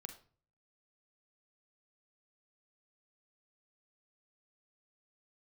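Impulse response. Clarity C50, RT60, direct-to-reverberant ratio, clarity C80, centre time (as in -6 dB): 10.0 dB, 0.45 s, 7.5 dB, 15.0 dB, 12 ms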